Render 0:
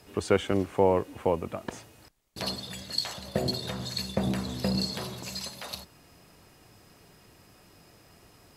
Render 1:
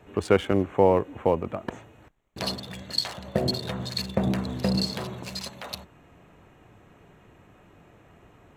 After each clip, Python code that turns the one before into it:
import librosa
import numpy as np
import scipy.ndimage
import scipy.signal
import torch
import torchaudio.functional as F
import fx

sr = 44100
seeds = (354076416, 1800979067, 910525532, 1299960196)

y = fx.wiener(x, sr, points=9)
y = y * librosa.db_to_amplitude(3.5)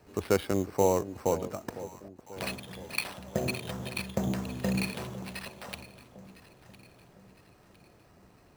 y = fx.sample_hold(x, sr, seeds[0], rate_hz=6800.0, jitter_pct=0)
y = fx.echo_alternate(y, sr, ms=504, hz=830.0, feedback_pct=66, wet_db=-13.5)
y = y * librosa.db_to_amplitude(-5.5)